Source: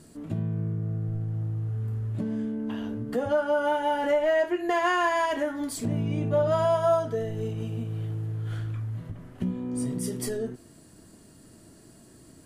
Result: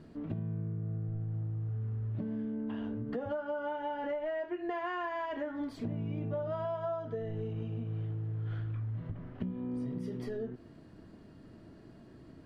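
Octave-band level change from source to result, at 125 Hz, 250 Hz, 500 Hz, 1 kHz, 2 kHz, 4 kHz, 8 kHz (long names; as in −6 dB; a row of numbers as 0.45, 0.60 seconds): −6.0 dB, −7.0 dB, −11.0 dB, −11.5 dB, −12.5 dB, −15.0 dB, below −25 dB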